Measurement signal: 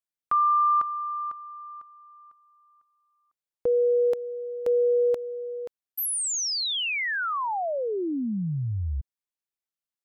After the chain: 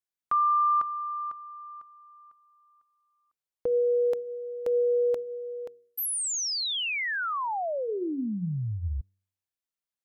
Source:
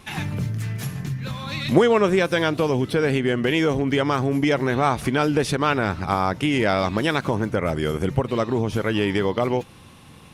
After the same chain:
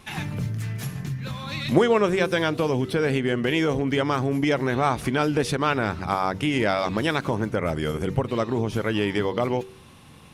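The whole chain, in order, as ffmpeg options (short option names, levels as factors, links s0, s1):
-af "bandreject=f=95.54:t=h:w=4,bandreject=f=191.08:t=h:w=4,bandreject=f=286.62:t=h:w=4,bandreject=f=382.16:t=h:w=4,bandreject=f=477.7:t=h:w=4,volume=0.794"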